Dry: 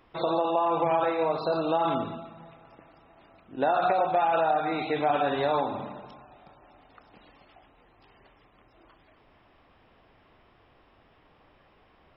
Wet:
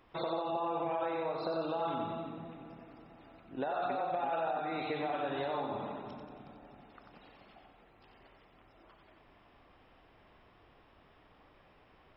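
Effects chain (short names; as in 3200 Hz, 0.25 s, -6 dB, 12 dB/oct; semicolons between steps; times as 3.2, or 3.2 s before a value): compressor 5:1, threshold -30 dBFS, peak gain reduction 9.5 dB; split-band echo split 410 Hz, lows 0.328 s, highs 91 ms, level -5.5 dB; gain -3.5 dB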